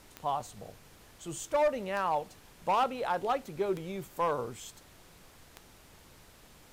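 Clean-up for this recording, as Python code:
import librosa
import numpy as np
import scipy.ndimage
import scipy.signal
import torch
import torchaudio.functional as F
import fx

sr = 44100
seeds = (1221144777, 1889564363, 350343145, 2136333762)

y = fx.fix_declip(x, sr, threshold_db=-22.0)
y = fx.fix_declick_ar(y, sr, threshold=10.0)
y = fx.noise_reduce(y, sr, print_start_s=6.21, print_end_s=6.71, reduce_db=20.0)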